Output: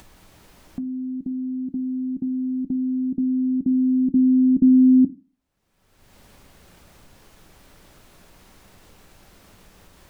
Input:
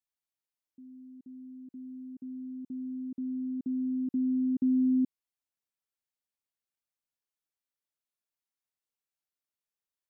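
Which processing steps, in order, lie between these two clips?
tilt EQ -3.5 dB/octave; upward compressor, threshold -26 dBFS; on a send: reverberation RT60 0.35 s, pre-delay 5 ms, DRR 14 dB; on the sum: trim +6 dB

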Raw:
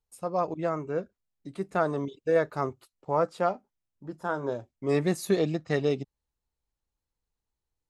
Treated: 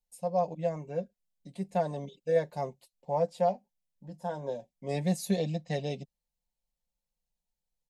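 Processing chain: static phaser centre 350 Hz, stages 6; comb 5.6 ms, depth 56%; trim -2 dB

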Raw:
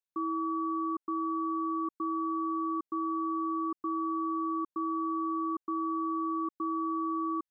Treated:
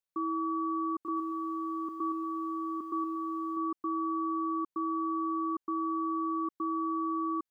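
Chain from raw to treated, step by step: 0.93–3.57 s: bit-crushed delay 118 ms, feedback 35%, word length 11-bit, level -6.5 dB

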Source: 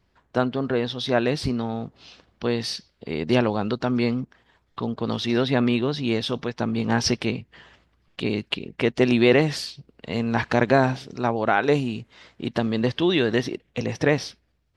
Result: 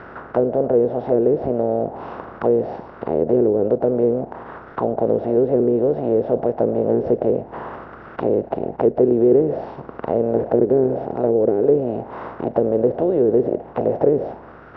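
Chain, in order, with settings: spectral levelling over time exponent 0.4; touch-sensitive low-pass 410–1500 Hz down, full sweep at -10 dBFS; trim -7.5 dB

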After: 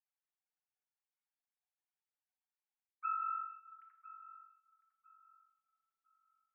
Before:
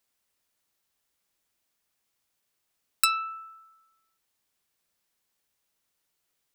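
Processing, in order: formants replaced by sine waves; Bessel low-pass 1.6 kHz; peaking EQ 880 Hz -4.5 dB 1.7 oct; reverse; compression 5:1, threshold -41 dBFS, peak gain reduction 14 dB; reverse; filtered feedback delay 1004 ms, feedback 45%, low-pass 950 Hz, level -12 dB; simulated room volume 820 m³, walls mixed, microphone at 0.98 m; trim +5 dB

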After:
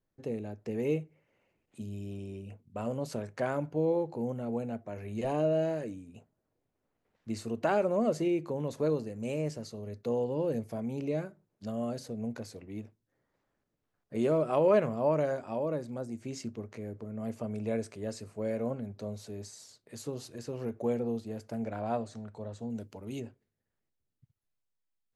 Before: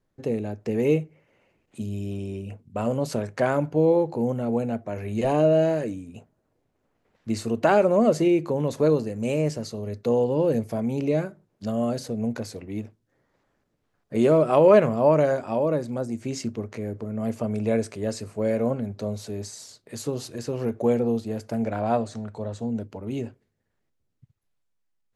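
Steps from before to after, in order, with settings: 22.70–23.20 s: treble shelf 3.4 kHz +11.5 dB; trim -9 dB

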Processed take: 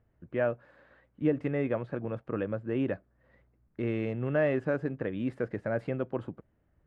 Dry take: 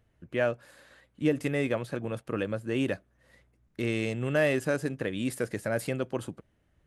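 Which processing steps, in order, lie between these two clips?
low-pass 1.6 kHz 12 dB/octave; trim -1 dB

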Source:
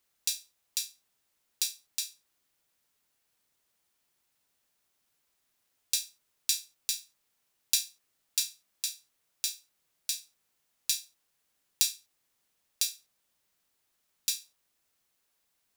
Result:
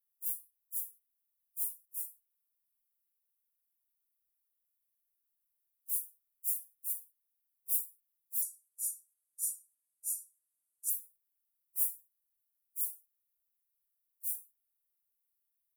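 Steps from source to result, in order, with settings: phase randomisation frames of 100 ms; 8.42–10.90 s: frequency weighting ITU-R 468; gate -51 dBFS, range -7 dB; inverse Chebyshev band-stop 150–4000 Hz, stop band 60 dB; treble shelf 4.5 kHz +4 dB

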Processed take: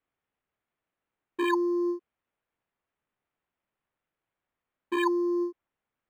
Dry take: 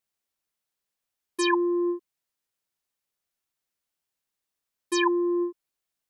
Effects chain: decimation joined by straight lines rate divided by 8×; trim -2 dB

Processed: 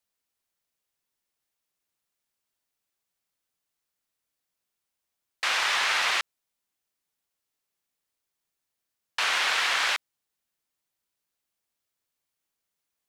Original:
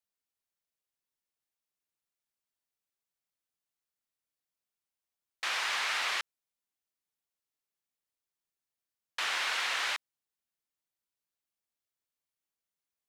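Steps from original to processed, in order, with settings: loudspeaker Doppler distortion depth 0.16 ms; trim +7 dB

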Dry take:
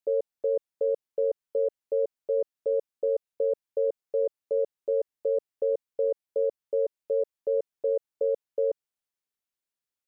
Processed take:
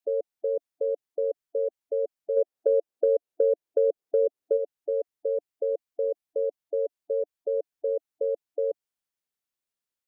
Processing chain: 2.36–4.56 s: peaking EQ 550 Hz -> 370 Hz +10 dB 1.5 oct; spectral gate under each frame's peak -25 dB strong; compression 2:1, threshold -23 dBFS, peak gain reduction 6 dB

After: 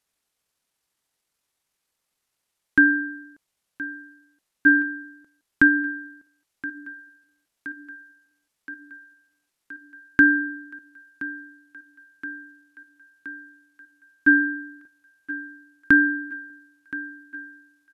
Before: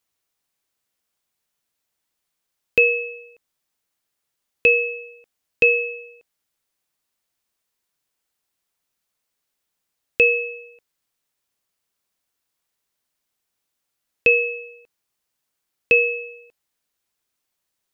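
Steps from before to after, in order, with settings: pitch shift -8.5 st; thinning echo 1022 ms, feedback 76%, high-pass 180 Hz, level -16 dB

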